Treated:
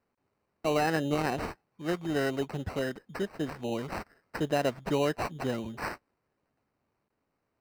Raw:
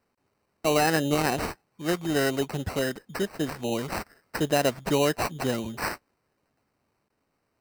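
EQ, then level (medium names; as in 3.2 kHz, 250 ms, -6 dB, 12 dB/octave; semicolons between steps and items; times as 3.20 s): treble shelf 4.8 kHz -11 dB; -4.0 dB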